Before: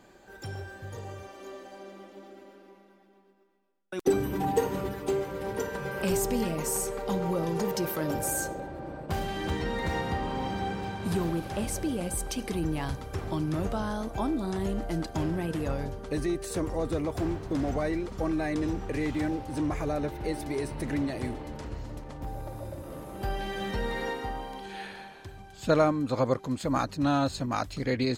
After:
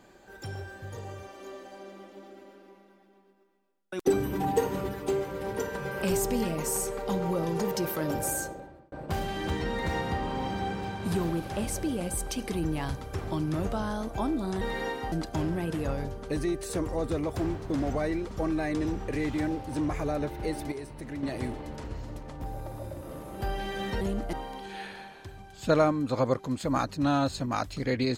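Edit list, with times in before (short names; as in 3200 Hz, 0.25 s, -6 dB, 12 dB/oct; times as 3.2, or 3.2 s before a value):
8.28–8.92 fade out
14.61–14.93 swap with 23.82–24.33
20.53–21.04 gain -7.5 dB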